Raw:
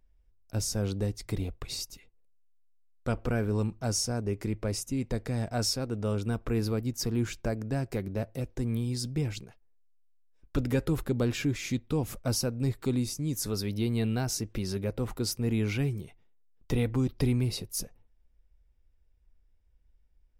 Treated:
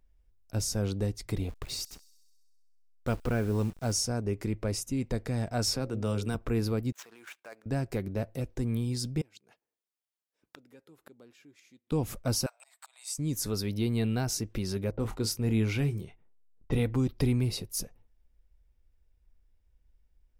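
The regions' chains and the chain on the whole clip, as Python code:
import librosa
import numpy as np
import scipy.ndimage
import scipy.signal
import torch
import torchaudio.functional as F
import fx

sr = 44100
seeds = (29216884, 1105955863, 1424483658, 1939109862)

y = fx.chain(x, sr, fx.delta_hold(step_db=-46.0),
    fx.echo_wet_highpass(ms=65, feedback_pct=72, hz=5200.0, wet_db=-20.0), at=(1.49, 3.93))
y = fx.chain(y, sr, fx.hum_notches(base_hz=60, count=10),
    fx.band_squash(depth_pct=40), at=(5.67, 6.35))
y = fx.chain(y, sr, fx.median_filter(points=9),
    fx.highpass(hz=920.0, slope=12),
    fx.level_steps(step_db=9), at=(6.92, 7.66))
y = fx.chain(y, sr, fx.highpass(hz=250.0, slope=12),
    fx.gate_flip(shuts_db=-29.0, range_db=-25), at=(9.21, 11.92))
y = fx.chain(y, sr, fx.auto_swell(attack_ms=338.0),
    fx.cheby1_highpass(hz=650.0, order=6),
    fx.peak_eq(hz=8100.0, db=14.5, octaves=0.24), at=(12.46, 13.18))
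y = fx.chain(y, sr, fx.env_lowpass(base_hz=740.0, full_db=-28.5),
    fx.doubler(ms=27.0, db=-10.5), at=(14.91, 16.8))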